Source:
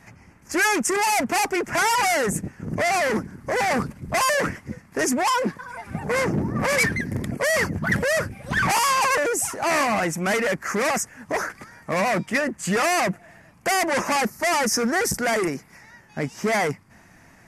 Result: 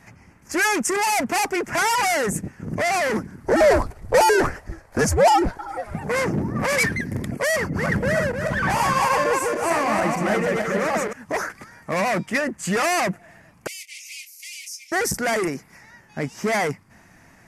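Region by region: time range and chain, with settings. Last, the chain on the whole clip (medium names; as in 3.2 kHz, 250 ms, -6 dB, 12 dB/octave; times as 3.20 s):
3.45–5.94 s: peaking EQ 760 Hz +10 dB 0.99 oct + frequency shift -170 Hz
7.56–11.13 s: backward echo that repeats 153 ms, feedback 56%, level -1.5 dB + treble shelf 2.1 kHz -9.5 dB
13.67–14.92 s: steep high-pass 2.2 kHz 96 dB/octave + compression 2.5:1, threshold -38 dBFS + doubling 23 ms -9.5 dB
whole clip: none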